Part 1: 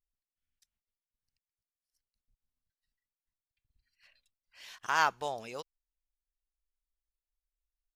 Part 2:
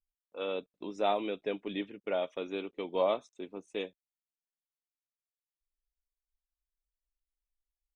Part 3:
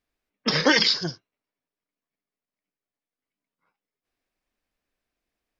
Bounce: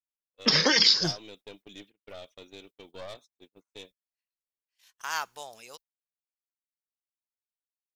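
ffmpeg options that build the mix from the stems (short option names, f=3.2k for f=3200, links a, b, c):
-filter_complex "[0:a]lowshelf=f=470:g=-7.5,adelay=150,volume=-5.5dB[a];[1:a]equalizer=f=4.3k:w=2.4:g=13.5,aeval=exprs='(tanh(22.4*val(0)+0.65)-tanh(0.65))/22.4':c=same,volume=-9.5dB[b];[2:a]acompressor=threshold=-23dB:ratio=3,volume=0dB[c];[a][b][c]amix=inputs=3:normalize=0,agate=range=-31dB:threshold=-53dB:ratio=16:detection=peak,crystalizer=i=2.5:c=0"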